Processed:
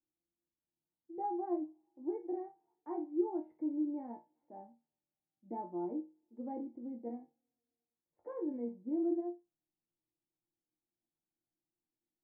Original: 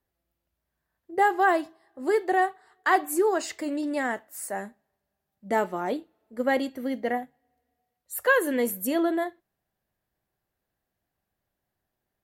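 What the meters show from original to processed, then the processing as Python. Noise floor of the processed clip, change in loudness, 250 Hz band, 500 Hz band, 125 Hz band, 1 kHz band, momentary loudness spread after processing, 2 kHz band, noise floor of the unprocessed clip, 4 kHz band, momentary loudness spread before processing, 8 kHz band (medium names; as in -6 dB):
under -85 dBFS, -13.0 dB, -7.5 dB, -14.5 dB, -13.0 dB, -18.5 dB, 17 LU, under -40 dB, -84 dBFS, under -40 dB, 12 LU, under -40 dB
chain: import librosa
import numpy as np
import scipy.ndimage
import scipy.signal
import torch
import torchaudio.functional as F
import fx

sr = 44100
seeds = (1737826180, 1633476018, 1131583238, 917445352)

y = fx.formant_cascade(x, sr, vowel='u')
y = fx.resonator_bank(y, sr, root=46, chord='sus4', decay_s=0.26)
y = y * librosa.db_to_amplitude(10.0)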